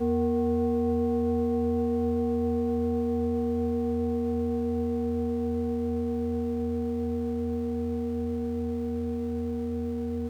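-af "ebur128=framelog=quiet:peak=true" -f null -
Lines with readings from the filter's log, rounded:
Integrated loudness:
  I:         -28.7 LUFS
  Threshold: -38.7 LUFS
Loudness range:
  LRA:         3.7 LU
  Threshold: -48.8 LUFS
  LRA low:   -30.7 LUFS
  LRA high:  -27.1 LUFS
True peak:
  Peak:      -17.6 dBFS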